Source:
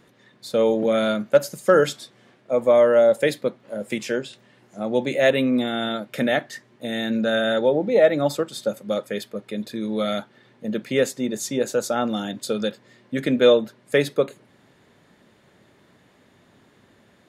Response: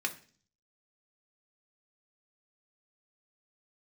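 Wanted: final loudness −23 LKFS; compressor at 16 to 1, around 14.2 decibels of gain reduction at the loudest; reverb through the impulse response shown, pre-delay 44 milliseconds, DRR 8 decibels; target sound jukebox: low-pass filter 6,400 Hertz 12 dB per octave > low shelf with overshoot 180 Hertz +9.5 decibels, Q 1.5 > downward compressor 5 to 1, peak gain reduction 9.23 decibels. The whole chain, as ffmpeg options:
-filter_complex "[0:a]acompressor=threshold=-24dB:ratio=16,asplit=2[link_01][link_02];[1:a]atrim=start_sample=2205,adelay=44[link_03];[link_02][link_03]afir=irnorm=-1:irlink=0,volume=-13dB[link_04];[link_01][link_04]amix=inputs=2:normalize=0,lowpass=6400,lowshelf=frequency=180:width_type=q:width=1.5:gain=9.5,acompressor=threshold=-31dB:ratio=5,volume=13dB"

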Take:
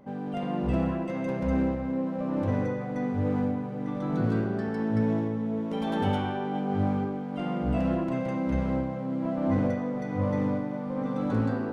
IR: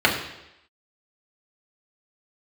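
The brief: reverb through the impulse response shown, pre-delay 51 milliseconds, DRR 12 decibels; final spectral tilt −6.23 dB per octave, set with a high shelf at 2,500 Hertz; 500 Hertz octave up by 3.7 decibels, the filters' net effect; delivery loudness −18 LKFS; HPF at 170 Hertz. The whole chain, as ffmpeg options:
-filter_complex "[0:a]highpass=170,equalizer=frequency=500:width_type=o:gain=4,highshelf=frequency=2500:gain=7.5,asplit=2[link_01][link_02];[1:a]atrim=start_sample=2205,adelay=51[link_03];[link_02][link_03]afir=irnorm=-1:irlink=0,volume=-32.5dB[link_04];[link_01][link_04]amix=inputs=2:normalize=0,volume=10dB"

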